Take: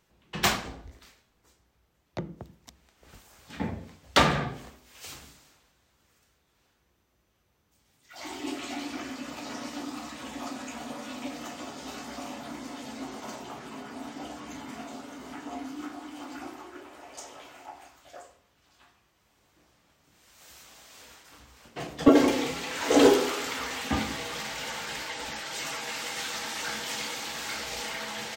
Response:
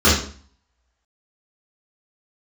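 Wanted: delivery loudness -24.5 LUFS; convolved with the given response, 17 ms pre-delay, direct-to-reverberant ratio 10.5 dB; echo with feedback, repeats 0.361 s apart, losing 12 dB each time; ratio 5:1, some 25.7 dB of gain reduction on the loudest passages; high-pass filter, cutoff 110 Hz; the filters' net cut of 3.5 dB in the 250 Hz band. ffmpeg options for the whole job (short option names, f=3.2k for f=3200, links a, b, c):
-filter_complex "[0:a]highpass=110,equalizer=f=250:t=o:g=-4,acompressor=threshold=-46dB:ratio=5,aecho=1:1:361|722|1083:0.251|0.0628|0.0157,asplit=2[a][b];[1:a]atrim=start_sample=2205,adelay=17[c];[b][c]afir=irnorm=-1:irlink=0,volume=-34.5dB[d];[a][d]amix=inputs=2:normalize=0,volume=22.5dB"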